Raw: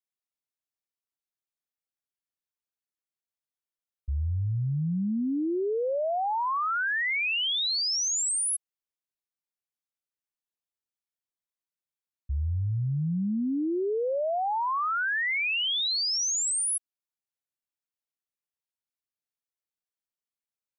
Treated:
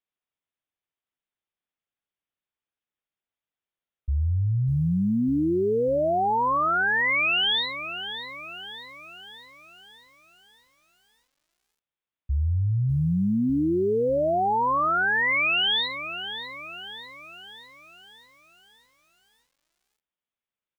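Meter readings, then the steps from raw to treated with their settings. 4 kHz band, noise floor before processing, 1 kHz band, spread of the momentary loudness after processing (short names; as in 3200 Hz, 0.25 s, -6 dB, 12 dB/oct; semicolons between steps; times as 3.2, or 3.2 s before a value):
+1.5 dB, under -85 dBFS, +5.0 dB, 18 LU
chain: downsampling 8000 Hz; lo-fi delay 0.598 s, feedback 55%, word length 10-bit, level -11.5 dB; gain +4.5 dB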